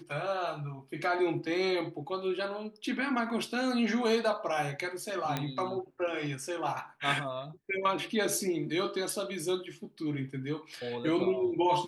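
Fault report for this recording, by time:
0:05.37: click −16 dBFS

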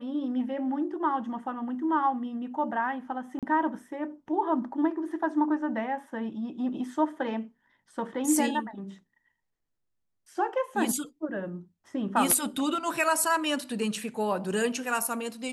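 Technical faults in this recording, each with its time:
0:03.39–0:03.43: drop-out 37 ms

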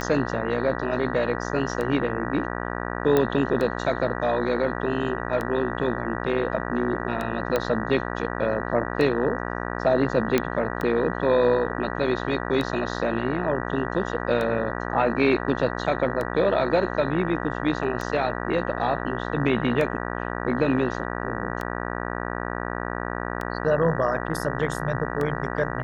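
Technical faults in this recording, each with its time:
mains buzz 60 Hz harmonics 32 −30 dBFS
scratch tick 33 1/3 rpm −16 dBFS
0:03.17: click −9 dBFS
0:07.56: click −10 dBFS
0:10.38: click −7 dBFS

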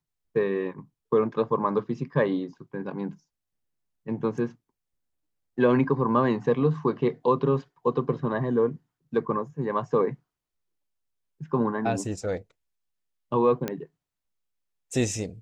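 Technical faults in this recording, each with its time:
0:13.68: click −14 dBFS

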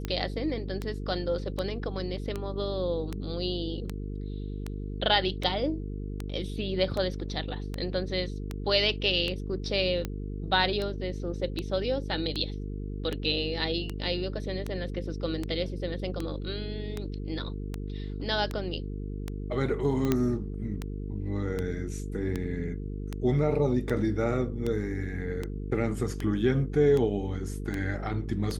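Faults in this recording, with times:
mains buzz 50 Hz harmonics 9 −35 dBFS
scratch tick 78 rpm −18 dBFS
0:20.12: click −11 dBFS

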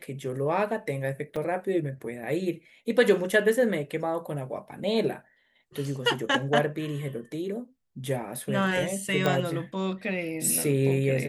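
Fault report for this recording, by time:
0:01.36: drop-out 4.1 ms
0:09.26: click −12 dBFS

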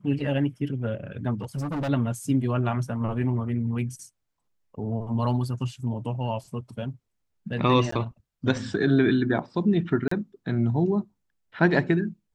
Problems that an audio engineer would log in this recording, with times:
0:01.41–0:01.90: clipping −26 dBFS
0:07.91–0:07.92: drop-out 14 ms
0:10.08–0:10.11: drop-out 34 ms

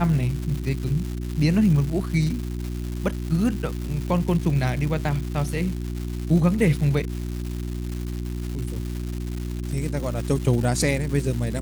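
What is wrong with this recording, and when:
surface crackle 410 per second −30 dBFS
mains hum 60 Hz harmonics 6 −29 dBFS

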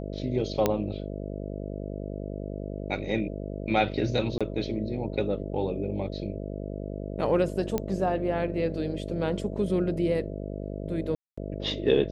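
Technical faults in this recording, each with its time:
mains buzz 50 Hz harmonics 13 −35 dBFS
0:00.66: click −9 dBFS
0:04.38–0:04.41: drop-out 26 ms
0:07.78: click −14 dBFS
0:11.15–0:11.38: drop-out 225 ms

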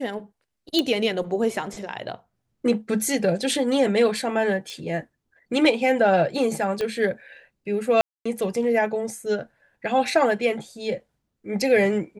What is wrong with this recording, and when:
0:00.79: click −9 dBFS
0:04.70: click −22 dBFS
0:06.81: click −15 dBFS
0:08.01–0:08.26: drop-out 245 ms

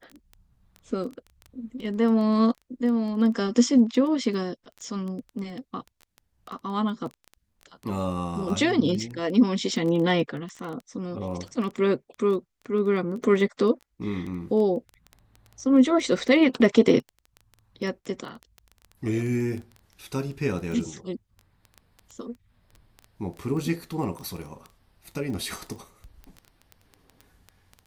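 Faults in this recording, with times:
surface crackle 10 per second −31 dBFS

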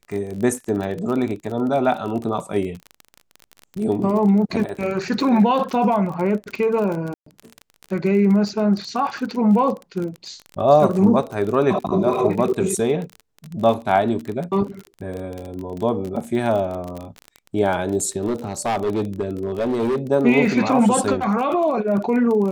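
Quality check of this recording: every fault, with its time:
surface crackle 32 per second −26 dBFS
0:07.14–0:07.26: drop-out 124 ms
0:18.26–0:19.99: clipping −17.5 dBFS

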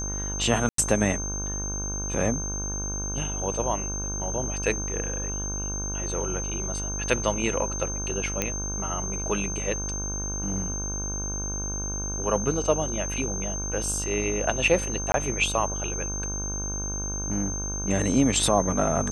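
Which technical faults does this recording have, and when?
mains buzz 50 Hz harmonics 32 −33 dBFS
whistle 6,300 Hz −31 dBFS
0:00.69–0:00.78: drop-out 93 ms
0:08.42: click −10 dBFS
0:15.12–0:15.14: drop-out 22 ms

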